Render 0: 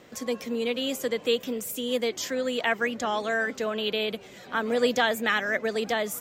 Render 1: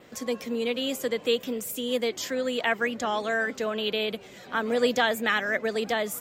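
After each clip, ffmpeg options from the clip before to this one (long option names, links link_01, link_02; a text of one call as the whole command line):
ffmpeg -i in.wav -af "adynamicequalizer=threshold=0.00158:dfrequency=6000:dqfactor=5.2:tfrequency=6000:tqfactor=5.2:attack=5:release=100:ratio=0.375:range=2:mode=cutabove:tftype=bell" out.wav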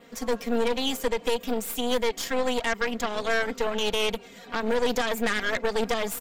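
ffmpeg -i in.wav -af "aecho=1:1:4.3:0.93,alimiter=limit=-15dB:level=0:latency=1:release=109,aeval=exprs='0.178*(cos(1*acos(clip(val(0)/0.178,-1,1)))-cos(1*PI/2))+0.0501*(cos(4*acos(clip(val(0)/0.178,-1,1)))-cos(4*PI/2))':channel_layout=same,volume=-2.5dB" out.wav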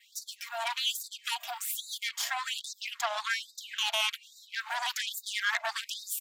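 ffmpeg -i in.wav -af "afftfilt=real='re*gte(b*sr/1024,600*pow(3700/600,0.5+0.5*sin(2*PI*1.2*pts/sr)))':imag='im*gte(b*sr/1024,600*pow(3700/600,0.5+0.5*sin(2*PI*1.2*pts/sr)))':win_size=1024:overlap=0.75" out.wav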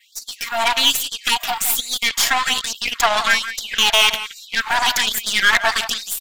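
ffmpeg -i in.wav -filter_complex "[0:a]dynaudnorm=framelen=120:gausssize=5:maxgain=9dB,asplit=2[link_01][link_02];[link_02]adelay=170,highpass=300,lowpass=3400,asoftclip=type=hard:threshold=-16dB,volume=-11dB[link_03];[link_01][link_03]amix=inputs=2:normalize=0,aeval=exprs='0.422*(cos(1*acos(clip(val(0)/0.422,-1,1)))-cos(1*PI/2))+0.0237*(cos(8*acos(clip(val(0)/0.422,-1,1)))-cos(8*PI/2))':channel_layout=same,volume=6dB" out.wav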